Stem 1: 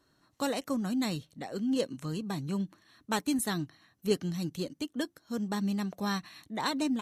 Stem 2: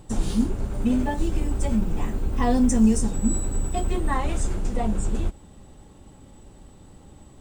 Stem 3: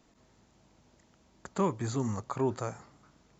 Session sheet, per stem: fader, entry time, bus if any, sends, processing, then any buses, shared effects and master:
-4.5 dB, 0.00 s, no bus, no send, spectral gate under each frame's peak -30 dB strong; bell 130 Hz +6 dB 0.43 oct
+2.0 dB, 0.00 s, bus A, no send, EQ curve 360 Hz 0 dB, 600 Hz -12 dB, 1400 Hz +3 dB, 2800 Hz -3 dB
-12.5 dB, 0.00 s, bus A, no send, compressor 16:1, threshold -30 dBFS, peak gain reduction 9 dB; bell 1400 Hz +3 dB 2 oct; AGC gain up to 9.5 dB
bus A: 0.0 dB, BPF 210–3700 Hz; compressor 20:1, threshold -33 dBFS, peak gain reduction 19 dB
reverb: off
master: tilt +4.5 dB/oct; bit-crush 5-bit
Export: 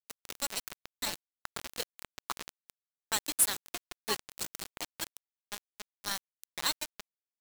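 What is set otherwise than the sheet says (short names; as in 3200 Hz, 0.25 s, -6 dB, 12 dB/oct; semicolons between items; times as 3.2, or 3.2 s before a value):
stem 2: missing EQ curve 360 Hz 0 dB, 600 Hz -12 dB, 1400 Hz +3 dB, 2800 Hz -3 dB; stem 3 -12.5 dB -> -5.0 dB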